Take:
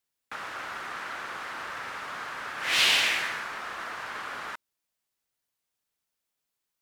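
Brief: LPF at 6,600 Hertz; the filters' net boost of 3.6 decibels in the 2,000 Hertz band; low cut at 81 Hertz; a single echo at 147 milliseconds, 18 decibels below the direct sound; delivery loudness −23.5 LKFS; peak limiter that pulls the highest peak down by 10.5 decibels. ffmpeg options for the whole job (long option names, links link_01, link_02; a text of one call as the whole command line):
ffmpeg -i in.wav -af "highpass=81,lowpass=6600,equalizer=frequency=2000:width_type=o:gain=4.5,alimiter=limit=-19dB:level=0:latency=1,aecho=1:1:147:0.126,volume=7.5dB" out.wav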